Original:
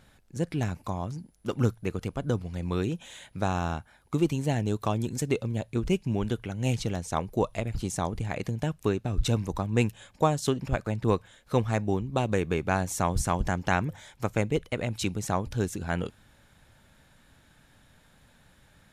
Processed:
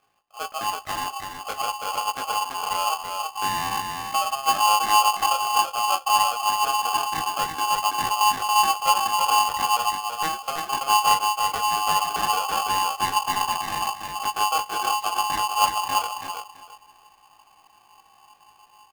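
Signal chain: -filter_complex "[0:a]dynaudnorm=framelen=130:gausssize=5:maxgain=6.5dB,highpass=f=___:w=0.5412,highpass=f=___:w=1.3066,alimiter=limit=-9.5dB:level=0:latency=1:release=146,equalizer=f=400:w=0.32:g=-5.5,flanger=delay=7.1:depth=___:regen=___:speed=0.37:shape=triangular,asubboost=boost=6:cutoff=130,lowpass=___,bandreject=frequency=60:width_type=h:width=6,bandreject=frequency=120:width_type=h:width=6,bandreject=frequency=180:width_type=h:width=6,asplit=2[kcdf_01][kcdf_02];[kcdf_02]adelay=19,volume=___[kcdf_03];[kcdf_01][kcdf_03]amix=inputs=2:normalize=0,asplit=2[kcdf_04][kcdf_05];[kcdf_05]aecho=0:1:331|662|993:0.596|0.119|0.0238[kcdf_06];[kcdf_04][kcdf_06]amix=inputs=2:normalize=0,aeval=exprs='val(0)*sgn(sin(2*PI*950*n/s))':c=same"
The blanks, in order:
99, 99, 8.4, -52, 1100, -3dB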